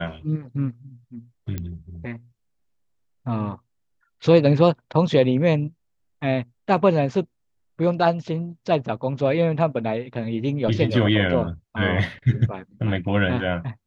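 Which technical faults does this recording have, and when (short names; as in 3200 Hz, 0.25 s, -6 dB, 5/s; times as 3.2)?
1.58 pop -16 dBFS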